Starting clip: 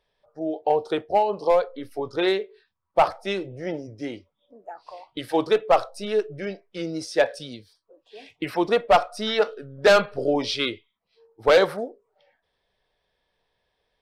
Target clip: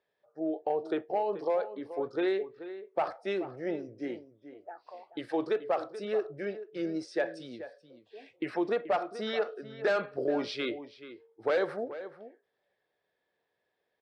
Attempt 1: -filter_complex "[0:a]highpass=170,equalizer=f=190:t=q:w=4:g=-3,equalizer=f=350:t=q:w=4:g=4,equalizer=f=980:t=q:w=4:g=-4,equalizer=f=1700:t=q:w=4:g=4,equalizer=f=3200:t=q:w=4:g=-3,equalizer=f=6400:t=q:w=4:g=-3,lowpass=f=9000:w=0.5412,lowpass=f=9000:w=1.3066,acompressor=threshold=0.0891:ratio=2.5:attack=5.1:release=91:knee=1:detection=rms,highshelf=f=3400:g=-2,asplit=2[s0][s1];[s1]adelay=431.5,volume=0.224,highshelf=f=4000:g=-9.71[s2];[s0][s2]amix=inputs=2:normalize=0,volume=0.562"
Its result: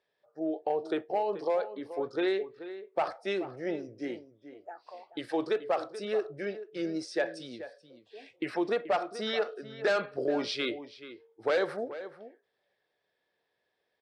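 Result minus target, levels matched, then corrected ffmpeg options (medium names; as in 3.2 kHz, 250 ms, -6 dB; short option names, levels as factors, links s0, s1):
8 kHz band +6.0 dB
-filter_complex "[0:a]highpass=170,equalizer=f=190:t=q:w=4:g=-3,equalizer=f=350:t=q:w=4:g=4,equalizer=f=980:t=q:w=4:g=-4,equalizer=f=1700:t=q:w=4:g=4,equalizer=f=3200:t=q:w=4:g=-3,equalizer=f=6400:t=q:w=4:g=-3,lowpass=f=9000:w=0.5412,lowpass=f=9000:w=1.3066,acompressor=threshold=0.0891:ratio=2.5:attack=5.1:release=91:knee=1:detection=rms,highshelf=f=3400:g=-10,asplit=2[s0][s1];[s1]adelay=431.5,volume=0.224,highshelf=f=4000:g=-9.71[s2];[s0][s2]amix=inputs=2:normalize=0,volume=0.562"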